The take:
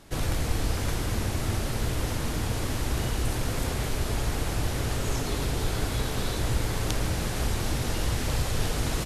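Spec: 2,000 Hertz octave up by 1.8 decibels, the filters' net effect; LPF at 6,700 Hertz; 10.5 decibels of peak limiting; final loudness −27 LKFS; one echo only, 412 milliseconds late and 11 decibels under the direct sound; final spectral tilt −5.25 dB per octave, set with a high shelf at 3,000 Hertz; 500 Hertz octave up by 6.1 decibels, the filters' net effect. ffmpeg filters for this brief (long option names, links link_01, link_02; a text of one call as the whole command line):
ffmpeg -i in.wav -af "lowpass=6700,equalizer=frequency=500:width_type=o:gain=7.5,equalizer=frequency=2000:width_type=o:gain=4,highshelf=frequency=3000:gain=-6,alimiter=limit=-22.5dB:level=0:latency=1,aecho=1:1:412:0.282,volume=5dB" out.wav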